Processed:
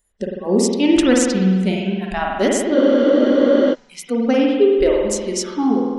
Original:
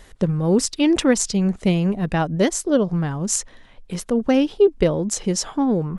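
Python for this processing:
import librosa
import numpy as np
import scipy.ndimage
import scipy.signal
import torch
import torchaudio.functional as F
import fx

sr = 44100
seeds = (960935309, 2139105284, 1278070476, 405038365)

y = fx.noise_reduce_blind(x, sr, reduce_db=28)
y = fx.rev_spring(y, sr, rt60_s=1.5, pass_ms=(48,), chirp_ms=80, drr_db=-1.5)
y = fx.spec_freeze(y, sr, seeds[0], at_s=2.77, hold_s=0.96)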